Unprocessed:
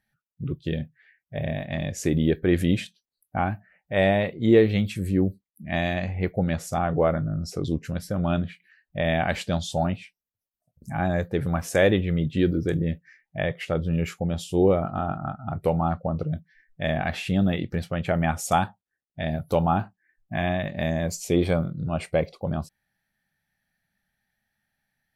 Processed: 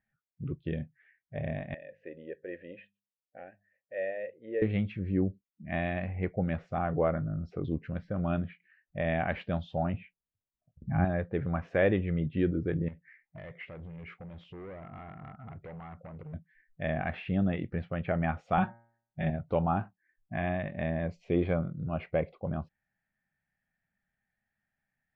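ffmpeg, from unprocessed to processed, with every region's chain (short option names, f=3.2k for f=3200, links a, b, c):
-filter_complex "[0:a]asettb=1/sr,asplit=3[a][b][c];[a]atrim=end=1.744[d];[b]atrim=start=1.74:end=4.62,asetpts=PTS-STARTPTS,afade=t=in:d=0.004:c=qsin,afade=t=out:st=2.876:d=0.004:c=qsin,asplit=3[e][f][g];[e]bandpass=f=530:t=q:w=8,volume=0dB[h];[f]bandpass=f=1.84k:t=q:w=8,volume=-6dB[i];[g]bandpass=f=2.48k:t=q:w=8,volume=-9dB[j];[h][i][j]amix=inputs=3:normalize=0,bandreject=f=50:t=h:w=6,bandreject=f=100:t=h:w=6,bandreject=f=150:t=h:w=6,bandreject=f=200:t=h:w=6[k];[c]atrim=start=4.616[l];[d][k]acrossfade=d=0.004:c1=hsin:c2=qsin[m];[m][l]acrossfade=d=0.004:c1=qsin:c2=hsin,asettb=1/sr,asplit=3[n][o][p];[n]atrim=end=9.944[q];[o]atrim=start=9.94:end=11.05,asetpts=PTS-STARTPTS,afade=t=in:d=0.004:c=qsin,afade=t=out:st=1.106:d=0.004:c=qsin,lowpass=f=3.3k:w=0.5412,lowpass=f=3.3k:w=1.3066,lowshelf=f=260:g=11[r];[p]atrim=start=11.046[s];[q][r]acrossfade=d=0.004:c1=hsin:c2=qsin[t];[t][s]acrossfade=d=0.004:c1=qsin:c2=hsin,asettb=1/sr,asplit=3[u][v][w];[u]atrim=end=12.884[x];[v]atrim=start=12.88:end=16.34,asetpts=PTS-STARTPTS,afade=t=in:d=0.004:c=qsin,afade=t=out:st=3.456:d=0.004:c=qsin,acompressor=threshold=-35dB:ratio=3:attack=3.2:release=140:knee=1:detection=peak,volume=35dB,asoftclip=hard,volume=-35dB,equalizer=f=2.1k:w=6:g=7[y];[w]atrim=start=16.336[z];[x][y]acrossfade=d=0.004:c1=hsin:c2=qsin[aa];[aa][z]acrossfade=d=0.004:c1=qsin:c2=hsin,asettb=1/sr,asplit=3[ab][ac][ad];[ab]atrim=end=18.574[ae];[ac]atrim=start=18.57:end=19.3,asetpts=PTS-STARTPTS,afade=t=in:d=0.004:c=qsin,afade=t=out:st=0.726:d=0.004:c=qsin,lowshelf=f=140:g=8,aecho=1:1:5.4:0.78,atrim=end_sample=32193,bandreject=f=116:t=h:w=4,bandreject=f=232:t=h:w=4,bandreject=f=348:t=h:w=4,bandreject=f=464:t=h:w=4,bandreject=f=580:t=h:w=4,bandreject=f=696:t=h:w=4,bandreject=f=812:t=h:w=4,bandreject=f=928:t=h:w=4,bandreject=f=1.044k:t=h:w=4,bandreject=f=1.16k:t=h:w=4,bandreject=f=1.276k:t=h:w=4,bandreject=f=1.392k:t=h:w=4,bandreject=f=1.508k:t=h:w=4,bandreject=f=1.624k:t=h:w=4,bandreject=f=1.74k:t=h:w=4,bandreject=f=1.856k:t=h:w=4,bandreject=f=1.972k:t=h:w=4,bandreject=f=2.088k:t=h:w=4,bandreject=f=2.204k:t=h:w=4,bandreject=f=2.32k:t=h:w=4[af];[ad]atrim=start=19.296[ag];[ae][af]acrossfade=d=0.004:c1=hsin:c2=qsin[ah];[ah][ag]acrossfade=d=0.004:c1=qsin:c2=hsin,lowpass=f=2.6k:w=0.5412,lowpass=f=2.6k:w=1.3066,bandreject=f=860:w=21,volume=-6dB"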